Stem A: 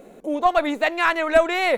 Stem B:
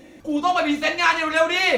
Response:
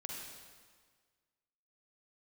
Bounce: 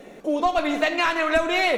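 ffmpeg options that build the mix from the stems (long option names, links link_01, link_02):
-filter_complex "[0:a]volume=-1.5dB,asplit=2[link_01][link_02];[link_02]volume=-3dB[link_03];[1:a]highpass=630,acompressor=threshold=-24dB:ratio=2.5,volume=1dB[link_04];[2:a]atrim=start_sample=2205[link_05];[link_03][link_05]afir=irnorm=-1:irlink=0[link_06];[link_01][link_04][link_06]amix=inputs=3:normalize=0,highshelf=frequency=4300:gain=-5,acrossover=split=330|3000[link_07][link_08][link_09];[link_08]acompressor=threshold=-21dB:ratio=3[link_10];[link_07][link_10][link_09]amix=inputs=3:normalize=0"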